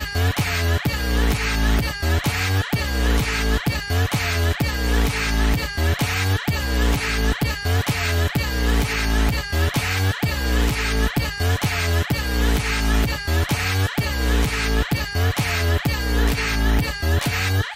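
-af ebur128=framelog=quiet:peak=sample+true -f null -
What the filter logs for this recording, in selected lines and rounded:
Integrated loudness:
  I:         -21.3 LUFS
  Threshold: -31.3 LUFS
Loudness range:
  LRA:         0.2 LU
  Threshold: -41.3 LUFS
  LRA low:   -21.4 LUFS
  LRA high:  -21.1 LUFS
Sample peak:
  Peak:       -9.3 dBFS
True peak:
  Peak:       -9.3 dBFS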